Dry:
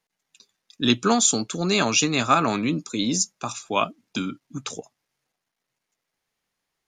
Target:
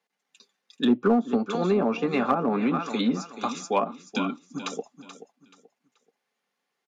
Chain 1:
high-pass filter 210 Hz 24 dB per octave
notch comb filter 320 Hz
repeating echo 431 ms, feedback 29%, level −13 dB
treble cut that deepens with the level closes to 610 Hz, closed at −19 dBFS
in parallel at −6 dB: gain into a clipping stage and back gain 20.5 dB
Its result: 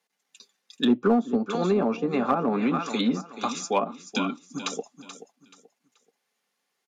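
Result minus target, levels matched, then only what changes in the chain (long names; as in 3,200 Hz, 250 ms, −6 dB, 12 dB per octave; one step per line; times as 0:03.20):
8,000 Hz band +4.5 dB
add after high-pass filter: high-shelf EQ 4,700 Hz −10 dB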